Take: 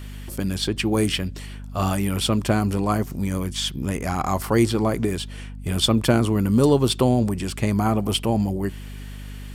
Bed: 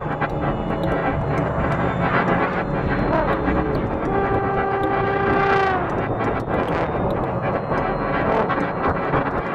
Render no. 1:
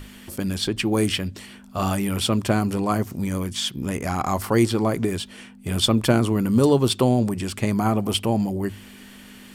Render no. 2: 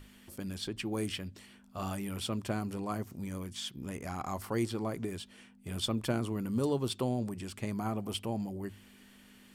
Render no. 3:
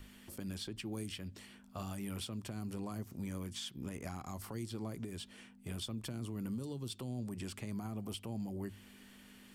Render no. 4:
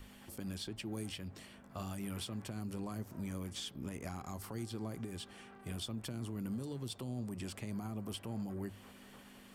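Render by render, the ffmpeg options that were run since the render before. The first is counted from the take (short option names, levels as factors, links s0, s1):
-af "bandreject=f=50:t=h:w=6,bandreject=f=100:t=h:w=6,bandreject=f=150:t=h:w=6"
-af "volume=0.211"
-filter_complex "[0:a]acrossover=split=270|3000[s0][s1][s2];[s1]acompressor=threshold=0.00794:ratio=6[s3];[s0][s3][s2]amix=inputs=3:normalize=0,alimiter=level_in=2.66:limit=0.0631:level=0:latency=1:release=240,volume=0.376"
-filter_complex "[1:a]volume=0.00891[s0];[0:a][s0]amix=inputs=2:normalize=0"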